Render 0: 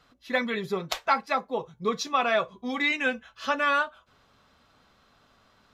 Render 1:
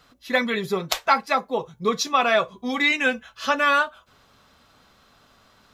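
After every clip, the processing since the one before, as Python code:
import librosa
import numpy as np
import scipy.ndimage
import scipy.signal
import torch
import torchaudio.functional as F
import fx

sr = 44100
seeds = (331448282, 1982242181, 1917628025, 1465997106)

y = fx.high_shelf(x, sr, hz=6600.0, db=8.0)
y = F.gain(torch.from_numpy(y), 4.5).numpy()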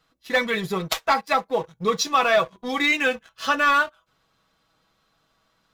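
y = x + 0.46 * np.pad(x, (int(6.2 * sr / 1000.0), 0))[:len(x)]
y = fx.leveller(y, sr, passes=2)
y = F.gain(torch.from_numpy(y), -7.5).numpy()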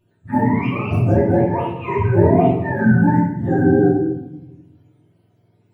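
y = fx.octave_mirror(x, sr, pivot_hz=670.0)
y = fx.room_shoebox(y, sr, seeds[0], volume_m3=390.0, walls='mixed', distance_m=2.6)
y = F.gain(torch.from_numpy(y), -2.0).numpy()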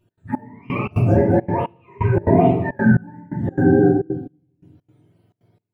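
y = fx.step_gate(x, sr, bpm=172, pattern='x.xx....xx.xxxx', floor_db=-24.0, edge_ms=4.5)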